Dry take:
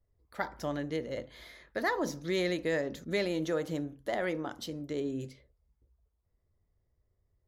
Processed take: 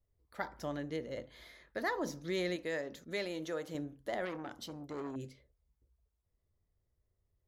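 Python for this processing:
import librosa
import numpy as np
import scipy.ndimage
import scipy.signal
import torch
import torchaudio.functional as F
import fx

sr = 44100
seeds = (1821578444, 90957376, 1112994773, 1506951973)

y = fx.low_shelf(x, sr, hz=320.0, db=-8.0, at=(2.56, 3.75))
y = fx.transformer_sat(y, sr, knee_hz=1200.0, at=(4.25, 5.16))
y = y * 10.0 ** (-4.5 / 20.0)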